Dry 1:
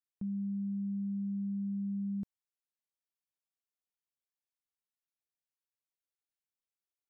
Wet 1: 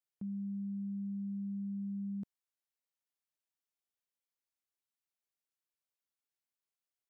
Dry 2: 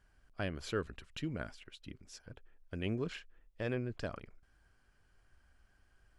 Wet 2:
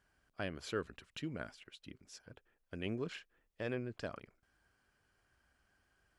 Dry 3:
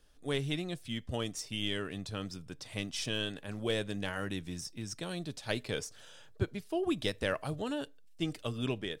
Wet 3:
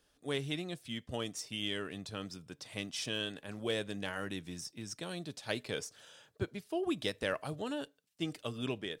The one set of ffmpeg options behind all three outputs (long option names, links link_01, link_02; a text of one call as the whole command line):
ffmpeg -i in.wav -af "highpass=frequency=150:poles=1,volume=-1.5dB" out.wav